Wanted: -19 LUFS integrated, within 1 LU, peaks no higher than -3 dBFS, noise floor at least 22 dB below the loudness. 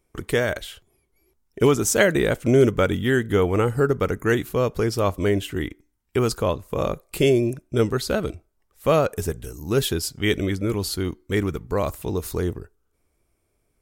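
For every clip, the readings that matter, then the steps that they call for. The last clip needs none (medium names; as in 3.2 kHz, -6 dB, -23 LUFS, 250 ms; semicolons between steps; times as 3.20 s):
loudness -23.0 LUFS; peak level -5.5 dBFS; loudness target -19.0 LUFS
-> trim +4 dB; peak limiter -3 dBFS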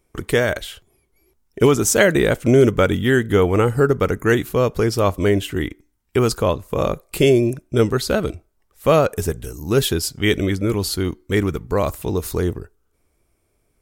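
loudness -19.0 LUFS; peak level -3.0 dBFS; noise floor -67 dBFS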